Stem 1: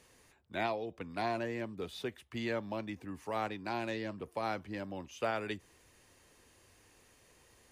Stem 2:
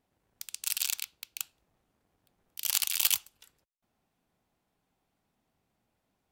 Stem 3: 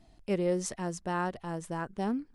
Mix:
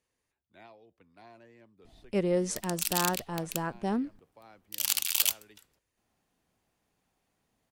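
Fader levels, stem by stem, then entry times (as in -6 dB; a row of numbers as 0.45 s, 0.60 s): -19.0 dB, 0.0 dB, +1.5 dB; 0.00 s, 2.15 s, 1.85 s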